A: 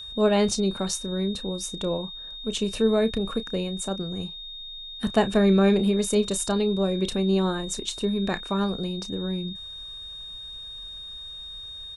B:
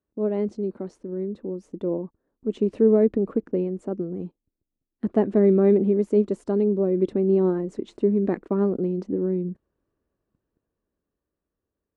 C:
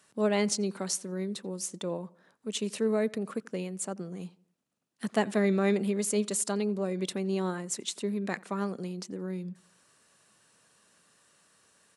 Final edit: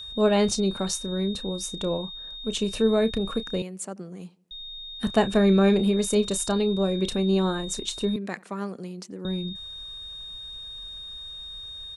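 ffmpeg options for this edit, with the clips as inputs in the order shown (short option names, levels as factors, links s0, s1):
-filter_complex "[2:a]asplit=2[s0][s1];[0:a]asplit=3[s2][s3][s4];[s2]atrim=end=3.622[s5];[s0]atrim=start=3.618:end=4.512[s6];[s3]atrim=start=4.508:end=8.162[s7];[s1]atrim=start=8.158:end=9.252[s8];[s4]atrim=start=9.248[s9];[s5][s6]acrossfade=d=0.004:c1=hsin:c2=hsin[s10];[s10][s7]acrossfade=d=0.004:c1=hsin:c2=hsin[s11];[s11][s8]acrossfade=d=0.004:c1=hsin:c2=hsin[s12];[s12][s9]acrossfade=d=0.004:c1=hsin:c2=hsin"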